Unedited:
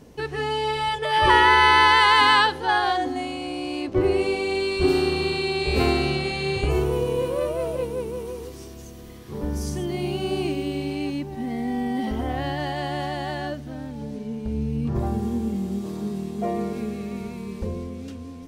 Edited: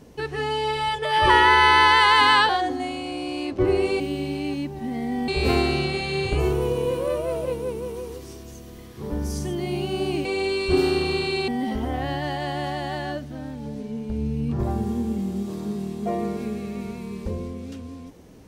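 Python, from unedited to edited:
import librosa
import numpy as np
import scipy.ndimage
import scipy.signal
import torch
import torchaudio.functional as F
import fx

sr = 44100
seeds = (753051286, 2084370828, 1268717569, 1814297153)

y = fx.edit(x, sr, fx.cut(start_s=2.49, length_s=0.36),
    fx.swap(start_s=4.36, length_s=1.23, other_s=10.56, other_length_s=1.28), tone=tone)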